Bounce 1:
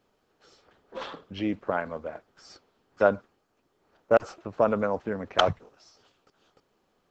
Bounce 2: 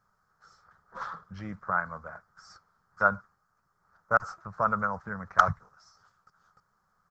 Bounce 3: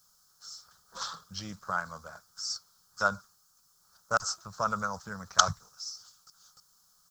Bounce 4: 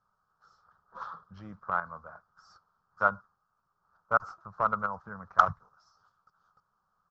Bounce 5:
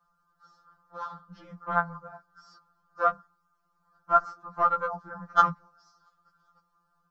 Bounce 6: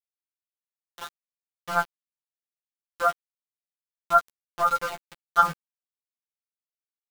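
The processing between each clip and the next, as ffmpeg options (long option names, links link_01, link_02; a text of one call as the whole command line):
ffmpeg -i in.wav -af "firequalizer=gain_entry='entry(180,0);entry(270,-19);entry(1300,9);entry(2700,-21);entry(5100,-3)':delay=0.05:min_phase=1" out.wav
ffmpeg -i in.wav -af "aexciter=amount=11.9:drive=7:freq=3100,volume=-3.5dB" out.wav
ffmpeg -i in.wav -filter_complex "[0:a]asplit=2[link_01][link_02];[link_02]acrusher=bits=3:mix=0:aa=0.000001,volume=-7.5dB[link_03];[link_01][link_03]amix=inputs=2:normalize=0,lowpass=frequency=1200:width_type=q:width=1.7,volume=-3.5dB" out.wav
ffmpeg -i in.wav -af "afftfilt=real='re*2.83*eq(mod(b,8),0)':imag='im*2.83*eq(mod(b,8),0)':win_size=2048:overlap=0.75,volume=6.5dB" out.wav
ffmpeg -i in.wav -filter_complex "[0:a]aeval=exprs='val(0)*gte(abs(val(0)),0.0266)':channel_layout=same,asplit=2[link_01][link_02];[link_02]adelay=13,volume=-7dB[link_03];[link_01][link_03]amix=inputs=2:normalize=0" out.wav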